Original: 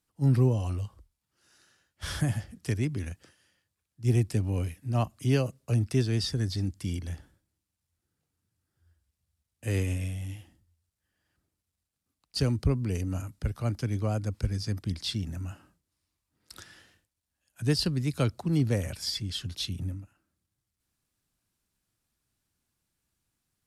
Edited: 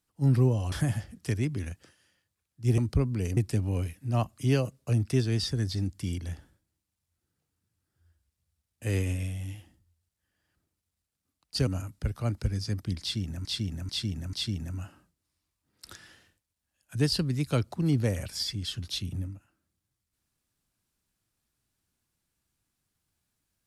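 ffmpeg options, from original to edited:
-filter_complex "[0:a]asplit=9[a][b][c][d][e][f][g][h][i];[a]atrim=end=0.722[j];[b]atrim=start=2.118:end=4.182[k];[c]atrim=start=12.478:end=13.072[l];[d]atrim=start=4.178:end=12.482[m];[e]atrim=start=13.068:end=13.782[n];[f]atrim=start=14.368:end=15.442[o];[g]atrim=start=14.998:end=15.442[p];[h]atrim=start=14.998:end=15.442[q];[i]atrim=start=14.998[r];[j][k]acrossfade=d=0.004:c1=hsin:c2=hsin[s];[s][l]acrossfade=d=0.004:c1=hsin:c2=hsin[t];[t][m]acrossfade=d=0.004:c1=hsin:c2=hsin[u];[u][n]acrossfade=d=0.004:c1=hsin:c2=hsin[v];[v][o]acrossfade=d=0.004:c1=hsin:c2=hsin[w];[w][p]acrossfade=d=0.004:c1=hsin:c2=hsin[x];[x][q]acrossfade=d=0.004:c1=hsin:c2=hsin[y];[y][r]acrossfade=d=0.004:c1=hsin:c2=hsin"

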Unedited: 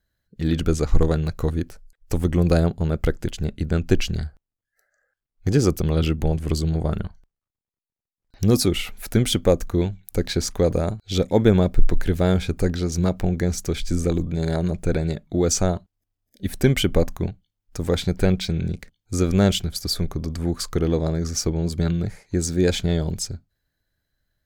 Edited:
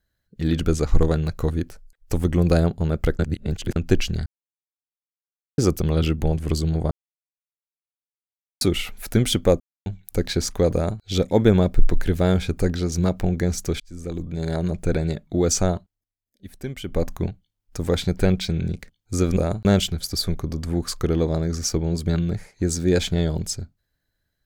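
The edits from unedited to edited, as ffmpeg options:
-filter_complex "[0:a]asplit=14[a][b][c][d][e][f][g][h][i][j][k][l][m][n];[a]atrim=end=3.192[o];[b]atrim=start=3.188:end=3.762,asetpts=PTS-STARTPTS,areverse[p];[c]atrim=start=3.758:end=4.26,asetpts=PTS-STARTPTS,afade=t=out:st=0.498:d=0.004:c=hsin[q];[d]atrim=start=4.26:end=5.58,asetpts=PTS-STARTPTS,volume=0[r];[e]atrim=start=5.58:end=6.91,asetpts=PTS-STARTPTS,afade=t=in:d=0.004:c=hsin,afade=t=out:st=1.326:d=0.004:c=hsin[s];[f]atrim=start=6.91:end=8.61,asetpts=PTS-STARTPTS,volume=0[t];[g]atrim=start=8.61:end=9.6,asetpts=PTS-STARTPTS,afade=t=in:d=0.004:c=hsin,afade=t=out:st=0.986:d=0.004:c=hsin[u];[h]atrim=start=9.6:end=9.86,asetpts=PTS-STARTPTS,volume=0[v];[i]atrim=start=9.86:end=13.8,asetpts=PTS-STARTPTS,afade=t=in:d=0.004:c=hsin,afade=t=out:st=3.936:d=0.004:c=hsin[w];[j]atrim=start=13.8:end=16.08,asetpts=PTS-STARTPTS,afade=t=in:d=1.23:c=qsin,afade=t=out:st=1.96:d=0.32:silence=0.199526[x];[k]atrim=start=16.08:end=16.82,asetpts=PTS-STARTPTS,volume=-14dB[y];[l]atrim=start=16.82:end=19.372,asetpts=PTS-STARTPTS,afade=t=in:d=0.32:silence=0.199526[z];[m]atrim=start=10.738:end=11.022[aa];[n]atrim=start=19.368[ab];[o][p]acrossfade=d=0.004:c1=hsin:c2=hsin[ac];[q][r][s][t][u][v][w][x][y][z]concat=n=10:v=0:a=1[ad];[ac][ad]acrossfade=d=0.004:c1=hsin:c2=hsin[ae];[ae][aa]acrossfade=d=0.004:c1=hsin:c2=hsin[af];[af][ab]acrossfade=d=0.004:c1=hsin:c2=hsin"

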